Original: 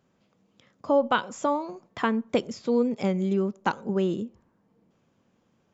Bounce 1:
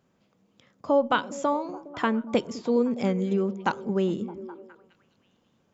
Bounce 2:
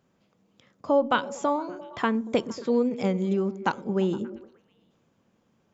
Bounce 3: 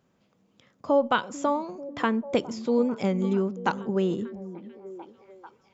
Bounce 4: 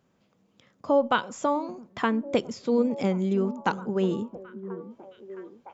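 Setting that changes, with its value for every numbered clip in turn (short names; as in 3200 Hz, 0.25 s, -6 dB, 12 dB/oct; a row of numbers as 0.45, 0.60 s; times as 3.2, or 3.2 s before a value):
delay with a stepping band-pass, time: 0.206, 0.116, 0.443, 0.666 s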